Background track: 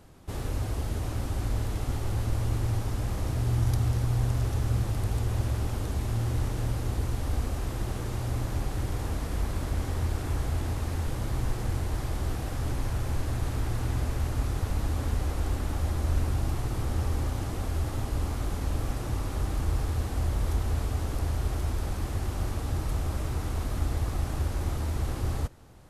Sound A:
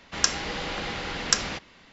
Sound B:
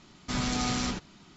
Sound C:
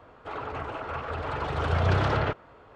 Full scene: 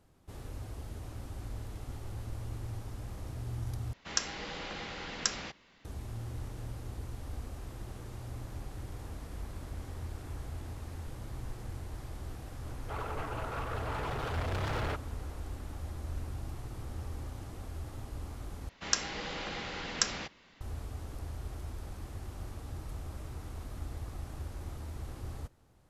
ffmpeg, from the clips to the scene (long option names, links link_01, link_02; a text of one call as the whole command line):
ffmpeg -i bed.wav -i cue0.wav -i cue1.wav -i cue2.wav -filter_complex "[1:a]asplit=2[link_01][link_02];[0:a]volume=-12dB[link_03];[3:a]asoftclip=type=hard:threshold=-29dB[link_04];[link_03]asplit=3[link_05][link_06][link_07];[link_05]atrim=end=3.934[link_08];[link_01]atrim=end=1.92,asetpts=PTS-STARTPTS,volume=-9dB[link_09];[link_06]atrim=start=5.846:end=18.694[link_10];[link_02]atrim=end=1.92,asetpts=PTS-STARTPTS,volume=-7dB[link_11];[link_07]atrim=start=20.606[link_12];[link_04]atrim=end=2.75,asetpts=PTS-STARTPTS,volume=-4dB,afade=type=in:duration=0.004:curve=hsin,afade=type=out:start_time=2.746:duration=0.004:curve=hsin,adelay=12630[link_13];[link_08][link_09]acrossfade=duration=0.004:curve1=hsin:curve2=hsin[link_14];[link_14][link_10]acrossfade=duration=0.004:curve1=hsin:curve2=hsin[link_15];[link_15][link_11]acrossfade=duration=0.004:curve1=hsin:curve2=hsin[link_16];[link_16][link_12]acrossfade=duration=0.004:curve1=hsin:curve2=hsin[link_17];[link_17][link_13]amix=inputs=2:normalize=0" out.wav